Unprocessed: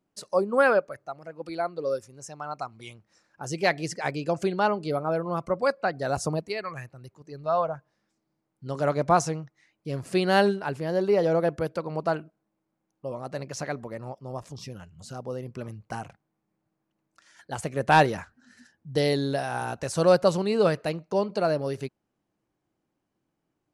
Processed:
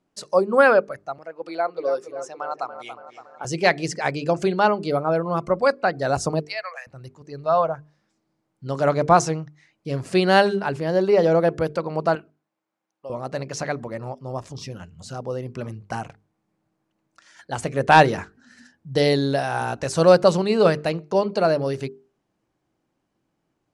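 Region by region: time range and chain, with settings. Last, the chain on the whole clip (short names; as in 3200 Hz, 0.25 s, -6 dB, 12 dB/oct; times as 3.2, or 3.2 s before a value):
1.18–3.45 HPF 340 Hz + high shelf 4700 Hz -7.5 dB + dark delay 0.282 s, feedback 56%, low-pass 2400 Hz, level -10 dB
6.42–6.87 rippled Chebyshev high-pass 480 Hz, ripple 6 dB + bell 5200 Hz +13 dB 0.3 oct
12.15–13.1 HPF 1100 Hz 6 dB/oct + high shelf 4400 Hz -6.5 dB
whole clip: LPF 8800 Hz 12 dB/oct; notches 50/100/150/200/250/300/350/400/450 Hz; gain +5.5 dB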